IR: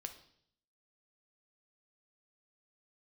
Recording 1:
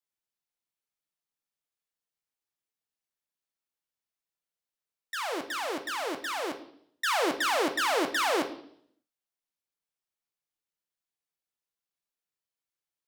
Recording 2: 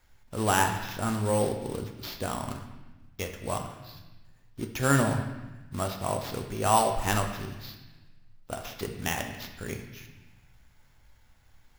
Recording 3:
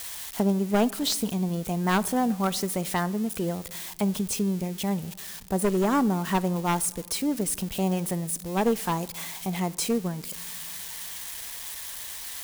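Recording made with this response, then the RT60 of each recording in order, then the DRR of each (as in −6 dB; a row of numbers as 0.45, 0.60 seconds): 1; 0.65 s, 1.1 s, non-exponential decay; 6.5, 3.5, 16.5 decibels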